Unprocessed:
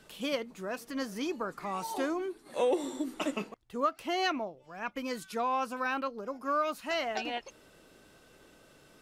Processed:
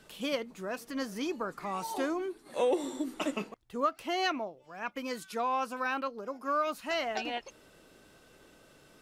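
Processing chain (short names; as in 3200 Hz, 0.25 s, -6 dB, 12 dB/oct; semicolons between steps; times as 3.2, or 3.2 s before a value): 4.05–6.67 low shelf 120 Hz -9 dB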